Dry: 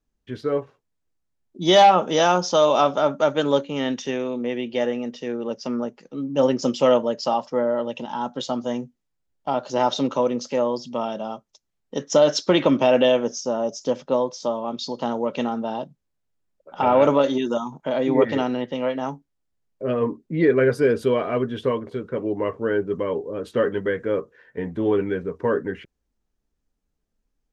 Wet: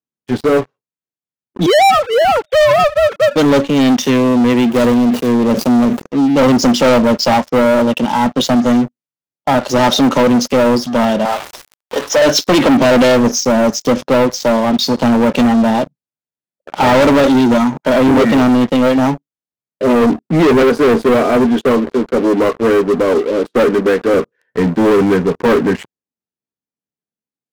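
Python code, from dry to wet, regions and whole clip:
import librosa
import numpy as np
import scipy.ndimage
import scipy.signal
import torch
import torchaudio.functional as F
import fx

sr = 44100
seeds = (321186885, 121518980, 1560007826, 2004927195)

y = fx.chain(x, sr, fx.sine_speech(),
    fx.highpass(hz=380.0, slope=12), at=(1.66, 3.36))
y = fx.chain(y, sr, fx.median_filter(points=25),
    fx.high_shelf(hz=6000.0, db=9.0),
    fx.sustainer(db_per_s=120.0), at=(4.68, 6.02))
y = fx.chain(y, sr, fx.zero_step(step_db=-29.0),
    fx.highpass(hz=590.0, slope=12),
    fx.high_shelf(hz=3300.0, db=-11.0), at=(11.25, 12.22))
y = fx.chain(y, sr, fx.highpass(hz=210.0, slope=24),
    fx.high_shelf(hz=2700.0, db=-11.0), at=(20.62, 24.14))
y = scipy.signal.sosfilt(scipy.signal.butter(4, 110.0, 'highpass', fs=sr, output='sos'), y)
y = fx.dynamic_eq(y, sr, hz=230.0, q=2.1, threshold_db=-37.0, ratio=4.0, max_db=7)
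y = fx.leveller(y, sr, passes=5)
y = y * librosa.db_to_amplitude(-2.5)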